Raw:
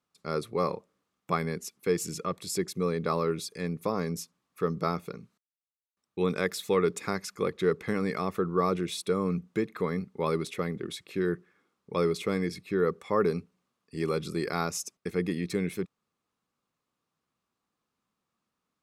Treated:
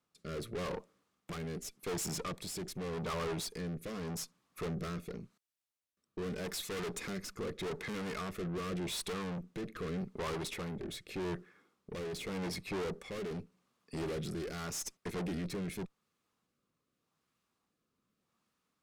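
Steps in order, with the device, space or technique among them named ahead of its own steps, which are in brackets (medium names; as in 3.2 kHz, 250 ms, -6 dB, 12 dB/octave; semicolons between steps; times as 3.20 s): overdriven rotary cabinet (valve stage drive 41 dB, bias 0.6; rotary cabinet horn 0.85 Hz); trim +6.5 dB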